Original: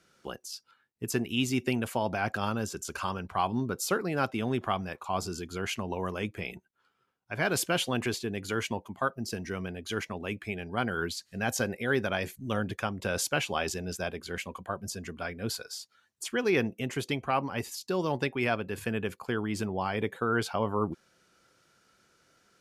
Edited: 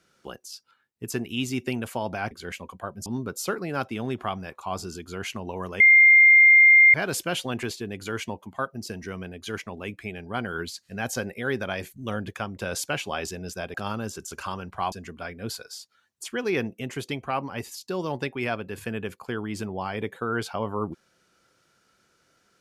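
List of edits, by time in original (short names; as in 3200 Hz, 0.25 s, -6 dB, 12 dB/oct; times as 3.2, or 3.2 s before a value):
2.31–3.49 swap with 14.17–14.92
6.23–7.37 bleep 2110 Hz -10.5 dBFS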